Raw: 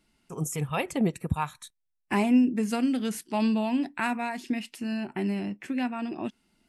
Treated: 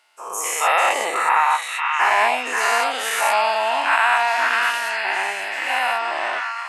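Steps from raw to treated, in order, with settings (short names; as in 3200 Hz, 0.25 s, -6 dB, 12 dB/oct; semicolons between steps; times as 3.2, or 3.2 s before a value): spectral dilation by 0.24 s; HPF 720 Hz 24 dB/oct; high shelf 2700 Hz -9.5 dB; in parallel at +2 dB: limiter -21.5 dBFS, peak gain reduction 11 dB; on the sum: delay with a stepping band-pass 0.531 s, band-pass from 1500 Hz, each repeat 0.7 oct, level -1 dB; gain +5 dB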